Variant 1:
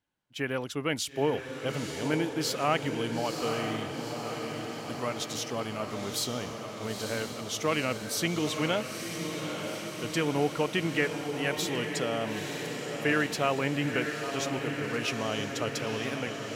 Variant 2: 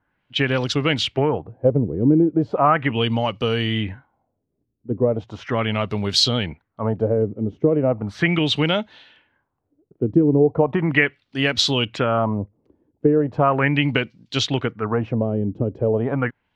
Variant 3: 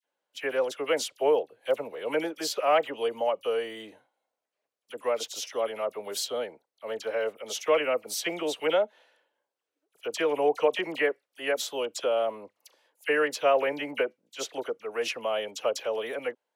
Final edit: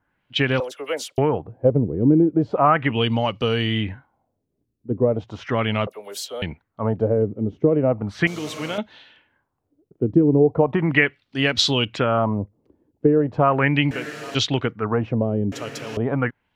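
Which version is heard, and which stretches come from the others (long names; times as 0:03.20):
2
0:00.60–0:01.18: punch in from 3
0:05.87–0:06.42: punch in from 3
0:08.27–0:08.78: punch in from 1
0:13.91–0:14.35: punch in from 1
0:15.52–0:15.97: punch in from 1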